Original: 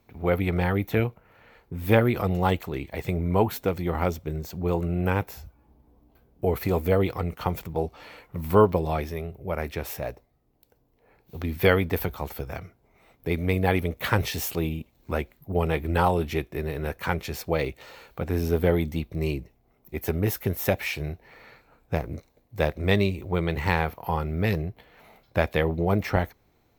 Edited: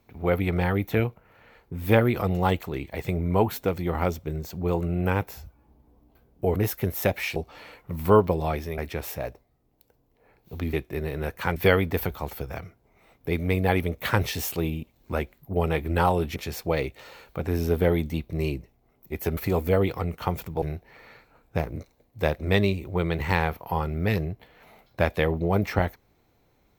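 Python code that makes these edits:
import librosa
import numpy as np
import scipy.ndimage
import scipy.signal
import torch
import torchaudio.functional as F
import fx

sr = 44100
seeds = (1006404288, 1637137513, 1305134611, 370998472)

y = fx.edit(x, sr, fx.swap(start_s=6.56, length_s=1.25, other_s=20.19, other_length_s=0.8),
    fx.cut(start_s=9.23, length_s=0.37),
    fx.move(start_s=16.35, length_s=0.83, to_s=11.55), tone=tone)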